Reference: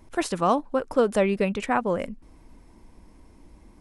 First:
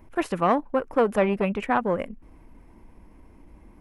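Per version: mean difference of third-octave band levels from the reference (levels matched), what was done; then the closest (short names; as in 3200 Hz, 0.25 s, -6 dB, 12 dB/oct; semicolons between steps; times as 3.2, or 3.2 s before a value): 2.5 dB: band shelf 5800 Hz -10.5 dB; core saturation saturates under 600 Hz; gain +1.5 dB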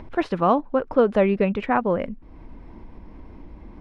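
3.5 dB: upward compressor, threshold -36 dBFS; air absorption 330 m; gain +4 dB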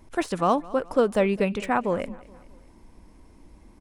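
1.5 dB: de-esser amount 75%; on a send: feedback echo 0.212 s, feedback 47%, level -21 dB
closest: third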